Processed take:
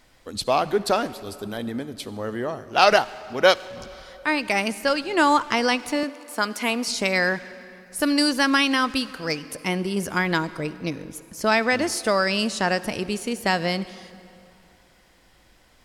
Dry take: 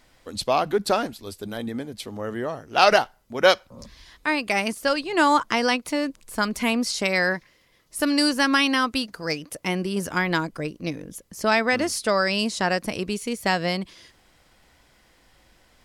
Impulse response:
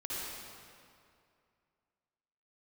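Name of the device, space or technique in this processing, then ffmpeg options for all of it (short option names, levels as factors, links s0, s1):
saturated reverb return: -filter_complex "[0:a]asplit=2[s0][s1];[1:a]atrim=start_sample=2205[s2];[s1][s2]afir=irnorm=-1:irlink=0,asoftclip=type=tanh:threshold=0.106,volume=0.168[s3];[s0][s3]amix=inputs=2:normalize=0,asettb=1/sr,asplit=3[s4][s5][s6];[s4]atrim=end=6.034[s7];[s5]atrim=start=6.03:end=6.88,asetpts=PTS-STARTPTS,afade=t=in:d=0.004:c=qsin,afade=t=out:st=0.846:d=0.004:c=qsin,highpass=280[s8];[s6]atrim=start=6.876[s9];[s7][s8]acrossfade=d=0.004:c1=hsin:c2=qsin[s10];[s10][s9]acrossfade=d=0.004:c1=qsin:c2=hsin"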